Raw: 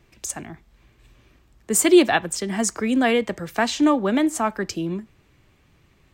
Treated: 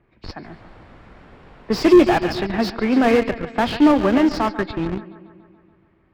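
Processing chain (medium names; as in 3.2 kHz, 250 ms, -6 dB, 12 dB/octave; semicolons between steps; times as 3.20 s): knee-point frequency compression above 2 kHz 1.5:1; bass shelf 120 Hz -6 dB; 0.43–1.85 s: added noise pink -43 dBFS; band-stop 6.2 kHz, Q 12; bucket-brigade echo 142 ms, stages 4096, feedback 64%, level -13 dB; in parallel at -7 dB: Schmitt trigger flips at -22.5 dBFS; on the sum: Chebyshev shaper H 7 -24 dB, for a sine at -4 dBFS; level-controlled noise filter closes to 1.7 kHz, open at -13 dBFS; slew-rate limiter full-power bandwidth 100 Hz; trim +5 dB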